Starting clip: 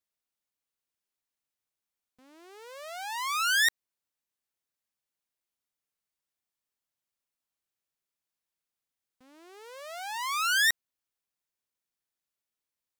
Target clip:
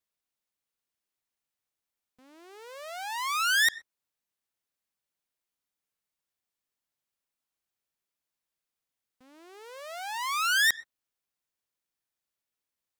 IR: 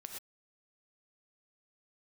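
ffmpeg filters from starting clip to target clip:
-filter_complex "[0:a]asplit=2[a][b];[1:a]atrim=start_sample=2205,lowpass=5.3k[c];[b][c]afir=irnorm=-1:irlink=0,volume=-13dB[d];[a][d]amix=inputs=2:normalize=0"

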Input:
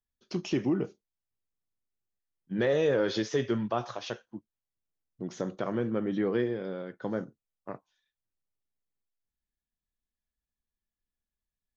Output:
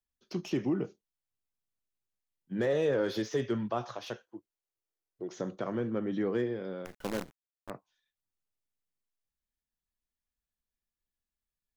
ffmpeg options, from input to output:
-filter_complex "[0:a]asettb=1/sr,asplit=3[a][b][c];[a]atrim=end=4.234[d];[b]atrim=start=4.23:end=5.38,asetpts=PTS-STARTPTS,afade=t=in:d=0.004:c=qsin,afade=t=out:st=1.146:d=0.004:c=qsin,lowshelf=f=290:t=q:w=3:g=-6.5[e];[c]atrim=start=5.376[f];[d][e]acrossfade=d=0.004:c1=hsin:c2=qsin[g];[g][f]acrossfade=d=0.004:c1=qsin:c2=hsin,acrossover=split=180|1400[h][i][j];[j]asoftclip=type=tanh:threshold=-36dB[k];[h][i][k]amix=inputs=3:normalize=0,asettb=1/sr,asplit=3[l][m][n];[l]atrim=end=6.854[o];[m]atrim=start=6.85:end=7.7,asetpts=PTS-STARTPTS,afade=t=in:d=0.004:c=qsin,afade=t=out:st=0.846:d=0.004:c=qsin,acrusher=bits=6:dc=4:mix=0:aa=0.000001[p];[n]atrim=start=7.696[q];[o][p]acrossfade=d=0.004:c1=hsin:c2=qsin[r];[r][q]acrossfade=d=0.004:c1=qsin:c2=hsin,volume=-2.5dB"

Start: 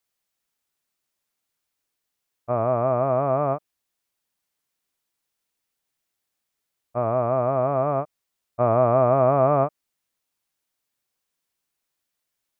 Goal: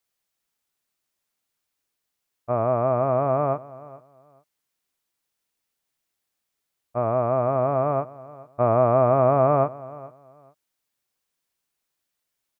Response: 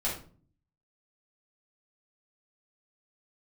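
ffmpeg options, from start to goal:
-af "aecho=1:1:428|856:0.106|0.0222"

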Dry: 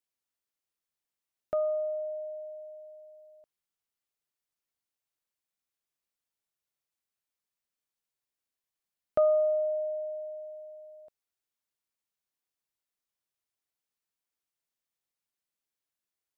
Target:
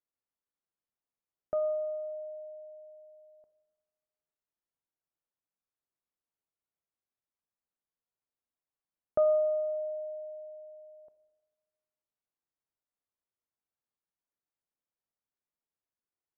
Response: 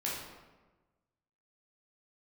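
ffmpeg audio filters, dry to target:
-filter_complex "[0:a]lowpass=1.3k,asplit=2[a][b];[1:a]atrim=start_sample=2205[c];[b][c]afir=irnorm=-1:irlink=0,volume=-15.5dB[d];[a][d]amix=inputs=2:normalize=0,volume=-2.5dB"

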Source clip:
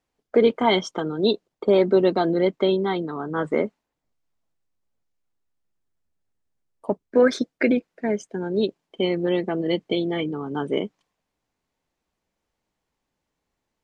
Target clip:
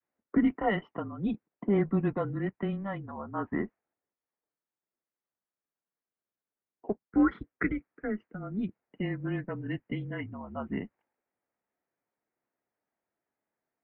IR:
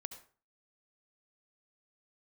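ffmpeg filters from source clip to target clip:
-filter_complex "[0:a]asettb=1/sr,asplit=3[a][b][c];[a]atrim=end=2.404[d];[b]atrim=start=2.4:end=2.94,asetpts=PTS-STARTPTS,afade=t=in:d=0.004:c=qsin,afade=t=out:st=0.536:d=0.004:c=qsin,aeval=exprs='if(lt(val(0),0),0.708*val(0),val(0))':c=same[e];[c]atrim=start=2.936[f];[d][e]acrossfade=d=0.004:c1=hsin:c2=qsin[g];[g][f]acrossfade=d=0.004:c1=qsin:c2=hsin,adynamicequalizer=threshold=0.02:dfrequency=720:dqfactor=1.1:tfrequency=720:tqfactor=1.1:attack=5:release=100:ratio=0.375:range=2.5:mode=cutabove:tftype=bell,highpass=f=410:t=q:w=0.5412,highpass=f=410:t=q:w=1.307,lowpass=f=2.4k:t=q:w=0.5176,lowpass=f=2.4k:t=q:w=0.7071,lowpass=f=2.4k:t=q:w=1.932,afreqshift=-200,volume=-5dB"

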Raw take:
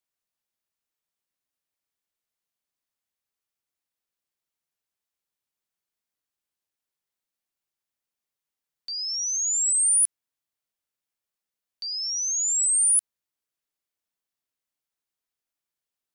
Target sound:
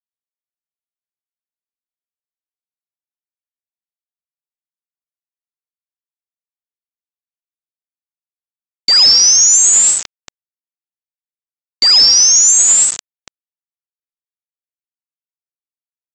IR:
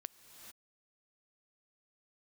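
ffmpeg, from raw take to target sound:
-filter_complex "[0:a]bass=f=250:g=-9,treble=f=4k:g=2,asplit=2[a][b];[b]aecho=0:1:174.9|230.3|285.7:0.398|0.501|0.398[c];[a][c]amix=inputs=2:normalize=0,acontrast=66,aresample=16000,aeval=exprs='val(0)*gte(abs(val(0)),0.0398)':c=same,aresample=44100,alimiter=level_in=16dB:limit=-1dB:release=50:level=0:latency=1,volume=-1dB" -ar 48000 -c:a libvorbis -b:a 192k

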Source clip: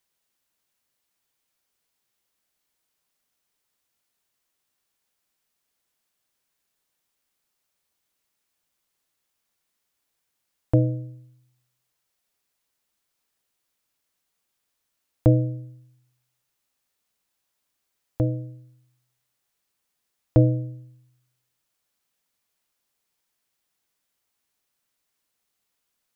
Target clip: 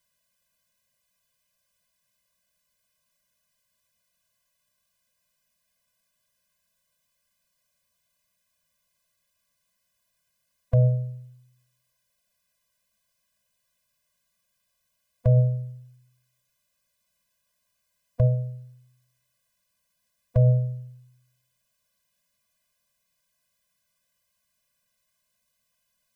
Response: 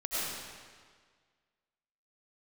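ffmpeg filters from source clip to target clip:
-af "bandreject=f=138.2:t=h:w=4,bandreject=f=276.4:t=h:w=4,bandreject=f=414.6:t=h:w=4,bandreject=f=552.8:t=h:w=4,bandreject=f=691:t=h:w=4,bandreject=f=829.2:t=h:w=4,bandreject=f=967.4:t=h:w=4,bandreject=f=1.1056k:t=h:w=4,bandreject=f=1.2438k:t=h:w=4,alimiter=level_in=13dB:limit=-1dB:release=50:level=0:latency=1,afftfilt=real='re*eq(mod(floor(b*sr/1024/240),2),0)':imag='im*eq(mod(floor(b*sr/1024/240),2),0)':win_size=1024:overlap=0.75,volume=-7.5dB"

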